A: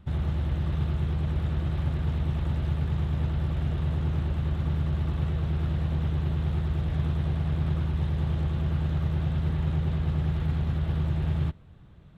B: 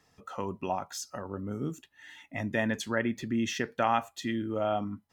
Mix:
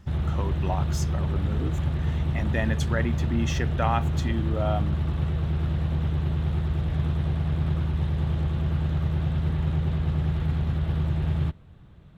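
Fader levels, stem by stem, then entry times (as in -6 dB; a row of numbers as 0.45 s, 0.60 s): +1.5 dB, +0.5 dB; 0.00 s, 0.00 s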